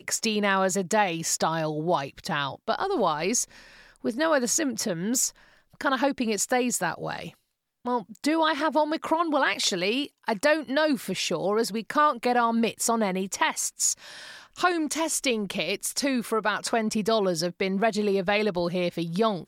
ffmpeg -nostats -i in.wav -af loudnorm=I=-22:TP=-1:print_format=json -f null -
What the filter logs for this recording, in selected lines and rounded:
"input_i" : "-25.8",
"input_tp" : "-8.9",
"input_lra" : "2.0",
"input_thresh" : "-36.0",